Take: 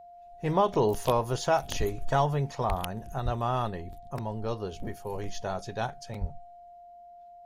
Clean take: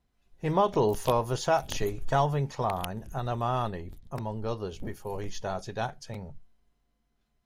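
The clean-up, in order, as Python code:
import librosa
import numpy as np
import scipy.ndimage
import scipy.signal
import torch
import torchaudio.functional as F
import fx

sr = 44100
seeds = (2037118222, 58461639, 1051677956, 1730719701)

y = fx.notch(x, sr, hz=700.0, q=30.0)
y = fx.fix_deplosive(y, sr, at_s=(1.78, 2.68, 3.24, 6.2))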